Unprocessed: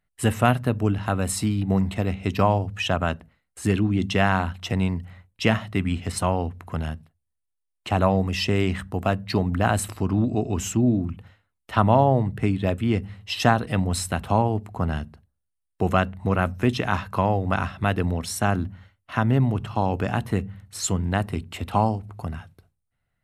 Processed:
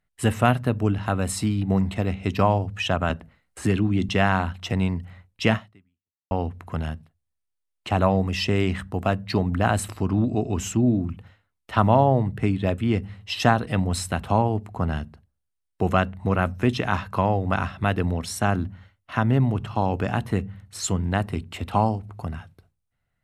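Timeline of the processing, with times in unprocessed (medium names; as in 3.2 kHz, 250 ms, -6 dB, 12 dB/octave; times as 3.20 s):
3.10–4.09 s: three bands compressed up and down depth 40%
5.54–6.31 s: fade out exponential
11.10–11.88 s: short-mantissa float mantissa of 6-bit
whole clip: treble shelf 11 kHz -6.5 dB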